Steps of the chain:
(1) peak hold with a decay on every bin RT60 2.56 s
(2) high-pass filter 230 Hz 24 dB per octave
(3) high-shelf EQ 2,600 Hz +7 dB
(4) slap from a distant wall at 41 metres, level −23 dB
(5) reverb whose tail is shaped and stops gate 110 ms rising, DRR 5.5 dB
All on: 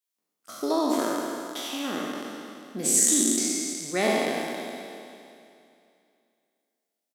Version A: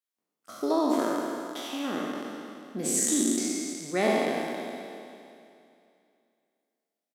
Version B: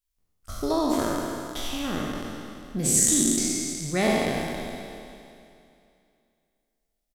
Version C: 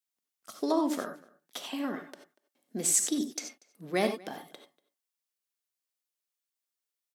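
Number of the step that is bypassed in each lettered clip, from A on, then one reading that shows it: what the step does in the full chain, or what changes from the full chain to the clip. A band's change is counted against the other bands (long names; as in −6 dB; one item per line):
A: 3, 8 kHz band −6.0 dB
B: 2, 125 Hz band +11.0 dB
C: 1, 125 Hz band +3.5 dB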